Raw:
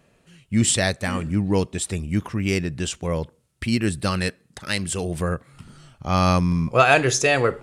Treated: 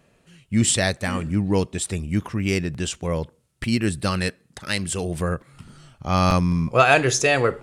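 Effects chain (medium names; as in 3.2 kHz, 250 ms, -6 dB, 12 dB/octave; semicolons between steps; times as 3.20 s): crackling interface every 0.89 s, samples 256, repeat, from 0.96 s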